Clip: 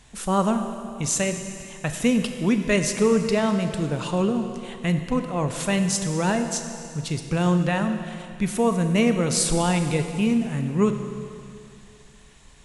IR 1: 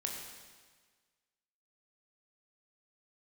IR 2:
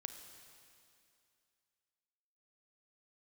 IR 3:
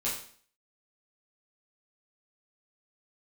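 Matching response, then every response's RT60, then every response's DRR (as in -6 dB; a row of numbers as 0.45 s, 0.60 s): 2; 1.5 s, 2.5 s, 0.50 s; 0.0 dB, 6.5 dB, -9.0 dB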